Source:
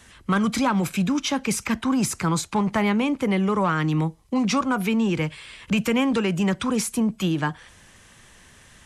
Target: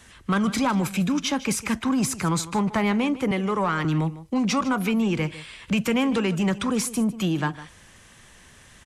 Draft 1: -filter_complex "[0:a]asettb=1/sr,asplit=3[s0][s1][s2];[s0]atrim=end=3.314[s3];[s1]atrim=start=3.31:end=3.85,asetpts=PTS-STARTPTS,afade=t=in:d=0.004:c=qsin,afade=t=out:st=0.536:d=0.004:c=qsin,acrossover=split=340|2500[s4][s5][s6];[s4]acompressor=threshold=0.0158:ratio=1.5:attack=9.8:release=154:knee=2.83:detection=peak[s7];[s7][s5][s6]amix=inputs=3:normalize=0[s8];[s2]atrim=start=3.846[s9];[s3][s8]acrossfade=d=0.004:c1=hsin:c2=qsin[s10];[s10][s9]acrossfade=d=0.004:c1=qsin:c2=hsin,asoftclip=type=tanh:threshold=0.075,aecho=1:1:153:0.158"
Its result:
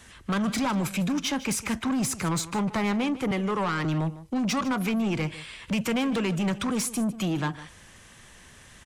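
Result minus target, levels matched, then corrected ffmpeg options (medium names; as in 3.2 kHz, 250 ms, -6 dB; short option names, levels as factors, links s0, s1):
saturation: distortion +12 dB
-filter_complex "[0:a]asettb=1/sr,asplit=3[s0][s1][s2];[s0]atrim=end=3.314[s3];[s1]atrim=start=3.31:end=3.85,asetpts=PTS-STARTPTS,afade=t=in:d=0.004:c=qsin,afade=t=out:st=0.536:d=0.004:c=qsin,acrossover=split=340|2500[s4][s5][s6];[s4]acompressor=threshold=0.0158:ratio=1.5:attack=9.8:release=154:knee=2.83:detection=peak[s7];[s7][s5][s6]amix=inputs=3:normalize=0[s8];[s2]atrim=start=3.846[s9];[s3][s8]acrossfade=d=0.004:c1=hsin:c2=qsin[s10];[s10][s9]acrossfade=d=0.004:c1=qsin:c2=hsin,asoftclip=type=tanh:threshold=0.211,aecho=1:1:153:0.158"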